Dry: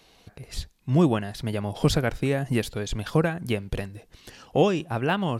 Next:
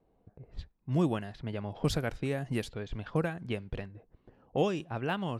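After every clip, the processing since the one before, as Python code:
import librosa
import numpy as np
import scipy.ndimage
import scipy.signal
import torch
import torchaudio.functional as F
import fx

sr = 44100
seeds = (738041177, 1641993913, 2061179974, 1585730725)

y = fx.env_lowpass(x, sr, base_hz=590.0, full_db=-19.5)
y = F.gain(torch.from_numpy(y), -8.0).numpy()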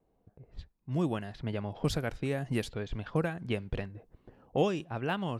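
y = fx.rider(x, sr, range_db=3, speed_s=0.5)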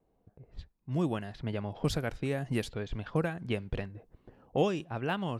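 y = x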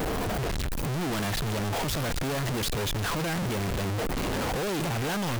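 y = np.sign(x) * np.sqrt(np.mean(np.square(x)))
y = F.gain(torch.from_numpy(y), 5.5).numpy()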